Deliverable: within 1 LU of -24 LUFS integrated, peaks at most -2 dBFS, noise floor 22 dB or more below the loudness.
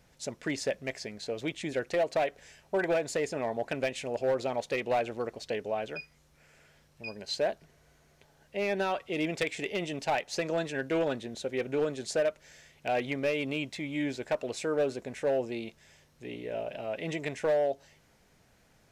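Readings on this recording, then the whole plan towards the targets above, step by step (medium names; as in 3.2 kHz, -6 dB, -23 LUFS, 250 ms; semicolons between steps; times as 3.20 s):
clipped samples 1.1%; clipping level -22.0 dBFS; loudness -32.5 LUFS; peak level -22.0 dBFS; loudness target -24.0 LUFS
-> clip repair -22 dBFS; trim +8.5 dB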